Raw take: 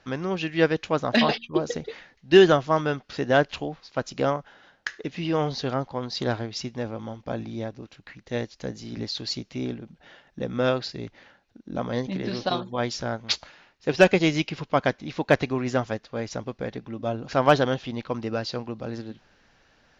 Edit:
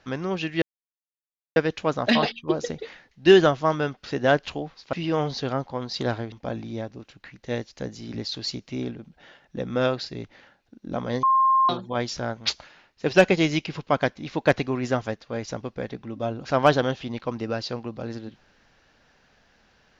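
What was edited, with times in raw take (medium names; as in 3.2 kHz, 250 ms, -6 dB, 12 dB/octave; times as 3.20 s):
0.62 s: insert silence 0.94 s
3.99–5.14 s: delete
6.53–7.15 s: delete
12.06–12.52 s: bleep 1.06 kHz -15.5 dBFS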